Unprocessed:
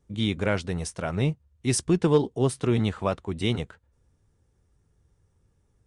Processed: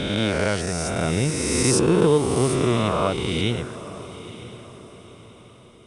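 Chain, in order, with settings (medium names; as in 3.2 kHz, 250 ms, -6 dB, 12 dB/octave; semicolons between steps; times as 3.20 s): reverse spectral sustain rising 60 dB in 2.50 s; echo that smears into a reverb 937 ms, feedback 41%, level -15 dB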